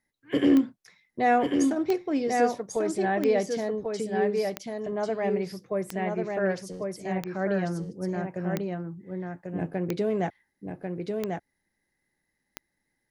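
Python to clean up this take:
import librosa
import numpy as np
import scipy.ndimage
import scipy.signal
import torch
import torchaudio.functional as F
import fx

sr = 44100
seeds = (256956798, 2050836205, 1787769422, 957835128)

y = fx.fix_declick_ar(x, sr, threshold=10.0)
y = fx.fix_echo_inverse(y, sr, delay_ms=1093, level_db=-4.0)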